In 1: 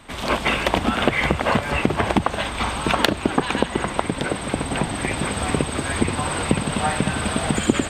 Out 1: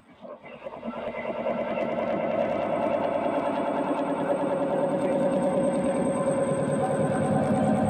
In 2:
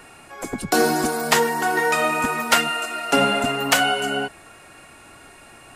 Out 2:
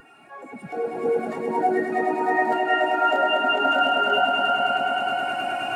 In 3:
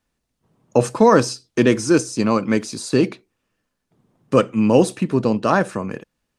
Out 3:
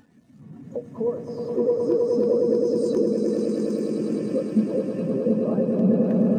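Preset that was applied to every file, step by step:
jump at every zero crossing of -19 dBFS; high-pass 120 Hz 12 dB/octave; dynamic bell 570 Hz, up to +5 dB, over -30 dBFS, Q 2; compression 10:1, threshold -19 dBFS; on a send: echo with a slow build-up 105 ms, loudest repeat 8, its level -4 dB; on the sum: integer overflow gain 5 dB; spectral contrast expander 2.5:1; peak normalisation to -9 dBFS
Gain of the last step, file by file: -4.0 dB, -4.0 dB, -4.0 dB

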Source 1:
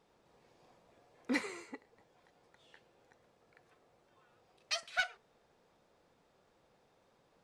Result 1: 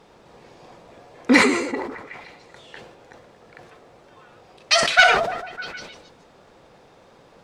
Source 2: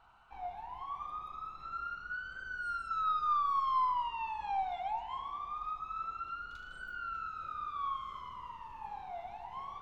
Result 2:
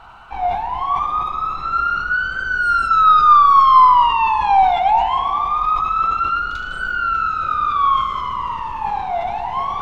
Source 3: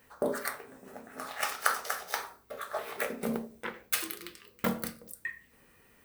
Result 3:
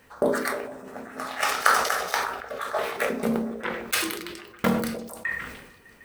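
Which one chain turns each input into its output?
treble shelf 11 kHz -11.5 dB; repeats whose band climbs or falls 151 ms, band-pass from 290 Hz, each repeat 0.7 oct, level -9.5 dB; decay stretcher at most 54 dB/s; peak normalisation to -1.5 dBFS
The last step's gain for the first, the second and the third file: +19.0 dB, +21.0 dB, +7.0 dB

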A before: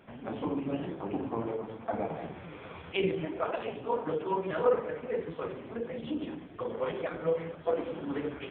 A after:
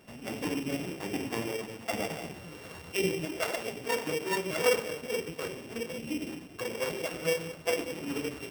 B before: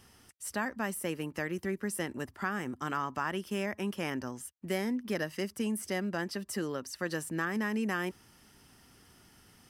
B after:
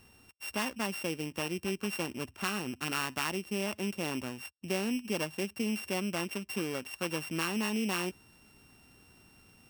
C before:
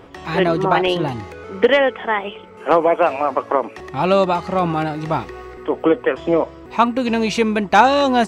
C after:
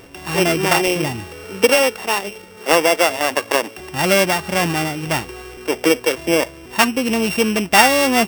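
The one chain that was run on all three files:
sorted samples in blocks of 16 samples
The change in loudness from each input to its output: +1.0 LU, +0.5 LU, +1.0 LU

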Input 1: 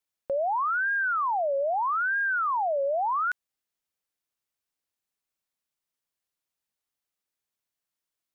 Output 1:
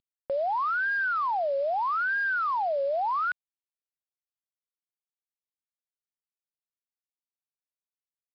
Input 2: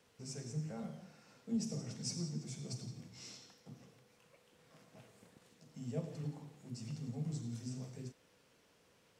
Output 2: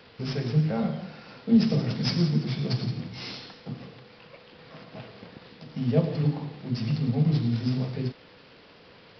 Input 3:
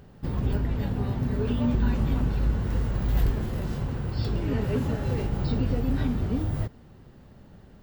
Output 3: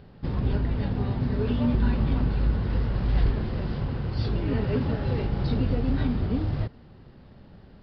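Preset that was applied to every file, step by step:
CVSD coder 64 kbps; resampled via 11.025 kHz; normalise loudness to -27 LUFS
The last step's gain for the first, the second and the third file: -0.5 dB, +17.5 dB, +1.0 dB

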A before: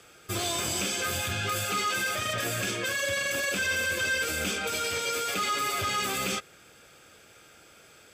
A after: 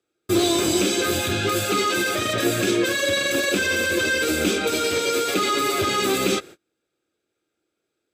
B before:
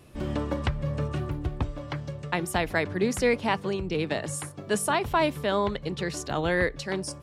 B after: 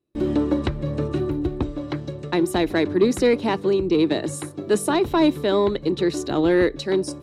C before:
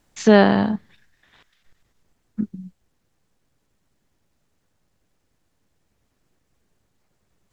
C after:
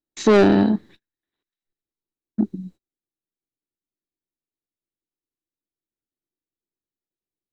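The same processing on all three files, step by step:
gate -47 dBFS, range -33 dB; small resonant body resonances 330/3900 Hz, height 15 dB, ringing for 25 ms; saturation -8.5 dBFS; peak normalisation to -9 dBFS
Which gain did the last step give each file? +4.5 dB, +0.5 dB, -0.5 dB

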